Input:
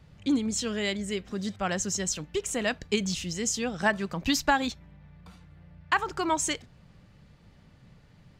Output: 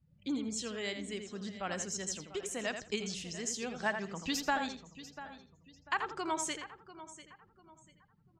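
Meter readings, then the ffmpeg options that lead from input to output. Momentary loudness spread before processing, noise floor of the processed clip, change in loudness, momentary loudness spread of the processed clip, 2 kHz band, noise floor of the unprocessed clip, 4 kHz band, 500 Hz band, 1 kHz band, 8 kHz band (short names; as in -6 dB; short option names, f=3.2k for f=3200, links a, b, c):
6 LU, -68 dBFS, -8.0 dB, 15 LU, -7.5 dB, -57 dBFS, -7.5 dB, -8.0 dB, -7.5 dB, -7.5 dB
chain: -filter_complex "[0:a]lowshelf=f=140:g=-10,asplit=2[a][b];[b]aecho=0:1:693|1386|2079:0.178|0.0587|0.0194[c];[a][c]amix=inputs=2:normalize=0,afftdn=nr=21:nf=-53,asplit=2[d][e];[e]adelay=83,lowpass=f=3.5k:p=1,volume=-7dB,asplit=2[f][g];[g]adelay=83,lowpass=f=3.5k:p=1,volume=0.17,asplit=2[h][i];[i]adelay=83,lowpass=f=3.5k:p=1,volume=0.17[j];[f][h][j]amix=inputs=3:normalize=0[k];[d][k]amix=inputs=2:normalize=0,volume=-8dB"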